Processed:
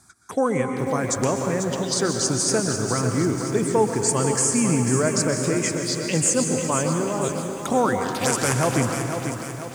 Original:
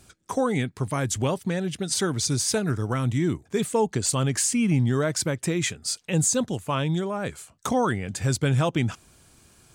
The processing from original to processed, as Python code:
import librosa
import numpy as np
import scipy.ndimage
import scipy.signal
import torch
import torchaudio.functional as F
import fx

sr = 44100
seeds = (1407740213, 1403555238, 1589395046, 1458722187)

y = fx.spec_flatten(x, sr, power=0.46, at=(8.0, 8.52), fade=0.02)
y = (np.mod(10.0 ** (12.5 / 20.0) * y + 1.0, 2.0) - 1.0) / 10.0 ** (12.5 / 20.0)
y = scipy.signal.sosfilt(scipy.signal.butter(2, 11000.0, 'lowpass', fs=sr, output='sos'), y)
y = fx.env_phaser(y, sr, low_hz=470.0, high_hz=3800.0, full_db=-21.5)
y = fx.highpass(y, sr, hz=240.0, slope=6)
y = fx.rev_plate(y, sr, seeds[0], rt60_s=2.2, hf_ratio=0.8, predelay_ms=110, drr_db=4.5)
y = fx.echo_crushed(y, sr, ms=493, feedback_pct=55, bits=8, wet_db=-7.5)
y = y * 10.0 ** (4.0 / 20.0)